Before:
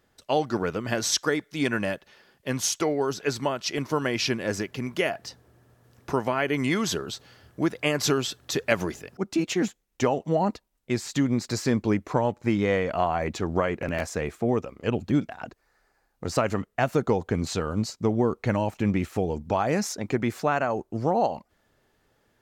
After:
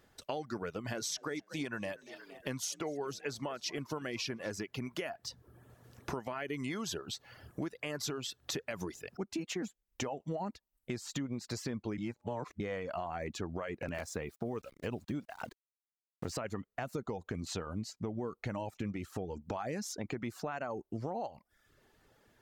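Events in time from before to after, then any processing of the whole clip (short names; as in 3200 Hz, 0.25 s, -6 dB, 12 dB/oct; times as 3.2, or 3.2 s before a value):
0.52–4.53 frequency-shifting echo 0.234 s, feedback 47%, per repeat +41 Hz, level -20 dB
11.98–12.6 reverse
13.94–16.4 sample gate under -45 dBFS
whole clip: reverb removal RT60 0.55 s; limiter -16 dBFS; compressor 4:1, threshold -39 dBFS; gain +1.5 dB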